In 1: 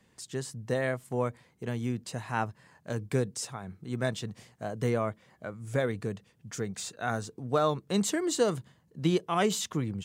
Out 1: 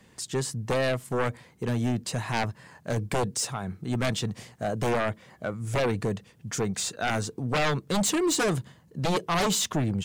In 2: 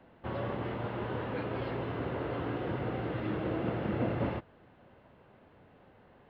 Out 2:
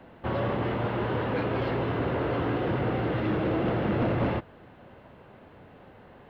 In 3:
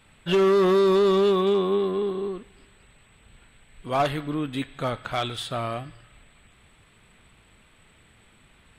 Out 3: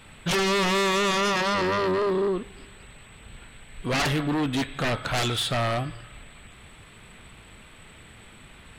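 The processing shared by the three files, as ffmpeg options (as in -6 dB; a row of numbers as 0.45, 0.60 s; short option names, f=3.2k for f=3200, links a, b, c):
-af "aeval=exprs='0.211*sin(PI/2*3.98*val(0)/0.211)':c=same,volume=-7.5dB"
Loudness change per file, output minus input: +3.5, +7.0, -1.0 LU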